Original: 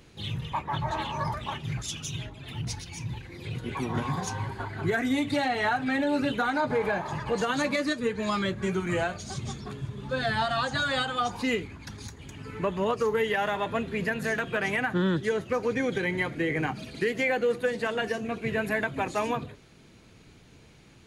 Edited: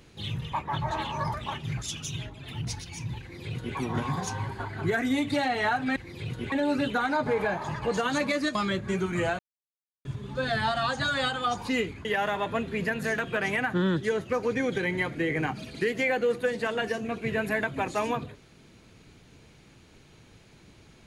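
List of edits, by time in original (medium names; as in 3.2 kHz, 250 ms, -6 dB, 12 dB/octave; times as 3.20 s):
3.21–3.77 s: copy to 5.96 s
7.99–8.29 s: delete
9.13–9.79 s: mute
11.79–13.25 s: delete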